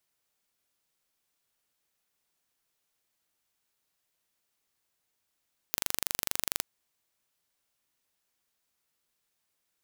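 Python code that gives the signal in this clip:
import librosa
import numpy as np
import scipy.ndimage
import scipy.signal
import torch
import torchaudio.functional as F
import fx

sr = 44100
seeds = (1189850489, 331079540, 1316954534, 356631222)

y = 10.0 ** (-1.5 / 20.0) * (np.mod(np.arange(round(0.88 * sr)), round(sr / 24.4)) == 0)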